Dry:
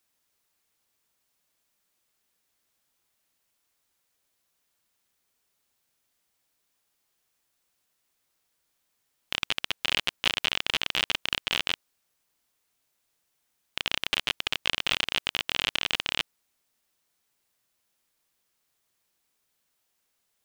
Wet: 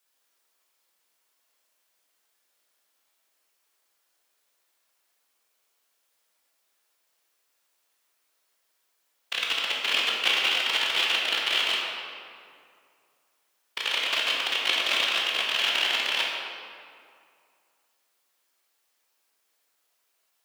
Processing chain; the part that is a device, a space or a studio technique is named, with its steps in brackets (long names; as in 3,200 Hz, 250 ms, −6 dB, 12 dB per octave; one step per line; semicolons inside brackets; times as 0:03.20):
whispering ghost (random phases in short frames; high-pass filter 400 Hz 12 dB per octave; convolution reverb RT60 2.3 s, pre-delay 12 ms, DRR −3 dB)